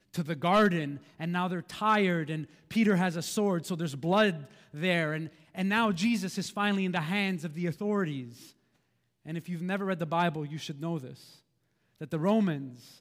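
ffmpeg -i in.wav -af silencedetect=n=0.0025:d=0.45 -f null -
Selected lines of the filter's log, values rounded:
silence_start: 8.52
silence_end: 9.25 | silence_duration: 0.74
silence_start: 11.39
silence_end: 11.96 | silence_duration: 0.57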